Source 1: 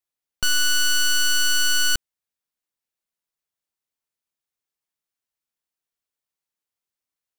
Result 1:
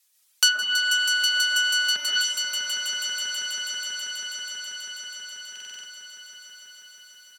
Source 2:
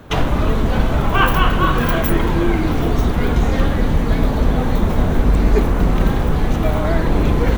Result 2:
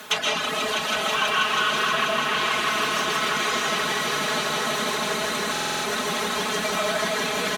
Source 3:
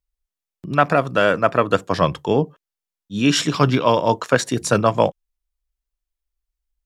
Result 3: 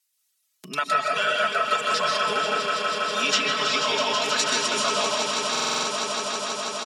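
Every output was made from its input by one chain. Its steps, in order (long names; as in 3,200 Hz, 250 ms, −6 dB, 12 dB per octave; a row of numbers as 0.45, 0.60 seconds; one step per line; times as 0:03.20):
brickwall limiter −9 dBFS
first difference
comb and all-pass reverb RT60 1.3 s, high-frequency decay 0.9×, pre-delay 85 ms, DRR −3.5 dB
treble cut that deepens with the level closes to 1,600 Hz, closed at −18.5 dBFS
high-pass filter 76 Hz 24 dB per octave
reverb reduction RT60 0.98 s
high-shelf EQ 10,000 Hz −9 dB
comb filter 4.7 ms, depth 91%
on a send: echo that builds up and dies away 162 ms, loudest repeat 5, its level −10 dB
on the sum: buffer that repeats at 0:05.51, samples 2,048, times 6
multiband upward and downward compressor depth 40%
loudness normalisation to −23 LKFS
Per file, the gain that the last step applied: +13.0, +9.0, +7.5 decibels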